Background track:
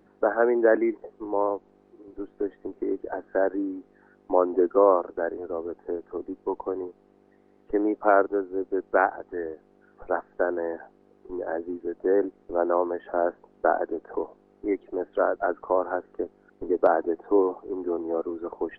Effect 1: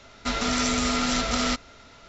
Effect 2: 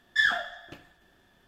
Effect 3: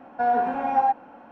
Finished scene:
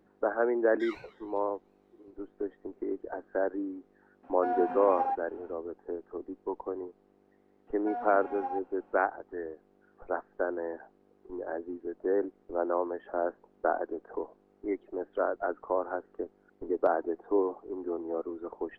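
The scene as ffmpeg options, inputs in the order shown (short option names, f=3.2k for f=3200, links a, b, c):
-filter_complex "[3:a]asplit=2[a][b];[0:a]volume=-6dB[c];[2:a]aeval=exprs='val(0)*sin(2*PI*490*n/s+490*0.7/2.7*sin(2*PI*2.7*n/s))':c=same,atrim=end=1.47,asetpts=PTS-STARTPTS,volume=-17dB,afade=t=in:d=0.004:c=hsin,afade=t=out:st=1.466:d=0.004:c=hsin,adelay=640[d];[a]atrim=end=1.31,asetpts=PTS-STARTPTS,volume=-10dB,afade=t=in:d=0.004:c=hsin,afade=t=out:st=1.306:d=0.004:c=hsin,adelay=4230[e];[b]atrim=end=1.31,asetpts=PTS-STARTPTS,volume=-15.5dB,afade=t=in:d=0.004:c=hsin,afade=t=out:st=1.306:d=0.004:c=hsin,adelay=7670[f];[c][d][e][f]amix=inputs=4:normalize=0"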